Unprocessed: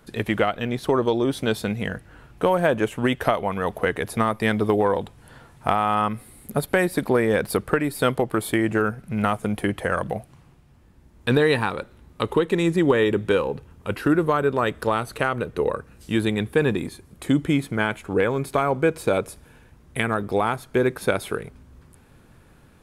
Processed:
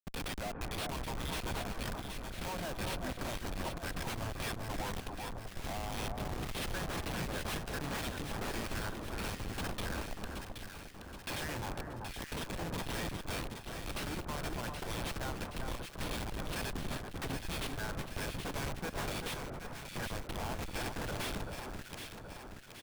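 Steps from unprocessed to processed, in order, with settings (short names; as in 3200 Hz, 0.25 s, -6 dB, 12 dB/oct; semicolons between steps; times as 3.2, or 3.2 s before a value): G.711 law mismatch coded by mu; HPF 93 Hz 24 dB/oct; pre-emphasis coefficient 0.97; notch 1800 Hz, Q 14; comb 1.2 ms, depth 88%; in parallel at -1.5 dB: compressor 16:1, threshold -50 dBFS, peak gain reduction 27.5 dB; on the sum: sample-rate reducer 6900 Hz, jitter 0%; harmonic tremolo 1.9 Hz, depth 100%, crossover 1900 Hz; Schmitt trigger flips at -40.5 dBFS; on a send: echo with dull and thin repeats by turns 0.387 s, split 1500 Hz, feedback 73%, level -3.5 dB; on the sum: gain +4.5 dB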